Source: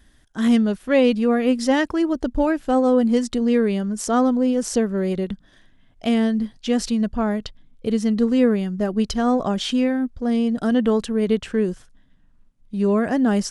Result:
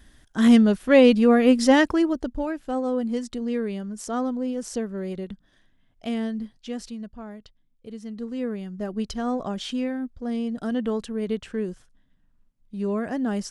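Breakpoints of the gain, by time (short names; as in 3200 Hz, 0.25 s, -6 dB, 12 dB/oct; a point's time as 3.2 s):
1.89 s +2 dB
2.41 s -8.5 dB
6.4 s -8.5 dB
7.22 s -17 dB
7.96 s -17 dB
8.9 s -7.5 dB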